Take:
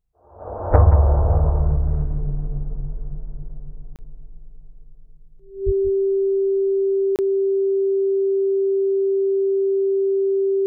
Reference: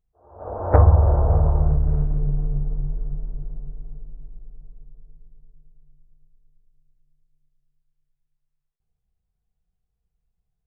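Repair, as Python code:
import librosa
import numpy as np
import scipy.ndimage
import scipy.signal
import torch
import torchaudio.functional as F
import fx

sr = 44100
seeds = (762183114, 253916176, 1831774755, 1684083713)

y = fx.notch(x, sr, hz=390.0, q=30.0)
y = fx.fix_deplosive(y, sr, at_s=(0.69, 5.65))
y = fx.fix_interpolate(y, sr, at_s=(3.96, 7.16), length_ms=28.0)
y = fx.fix_echo_inverse(y, sr, delay_ms=180, level_db=-11.5)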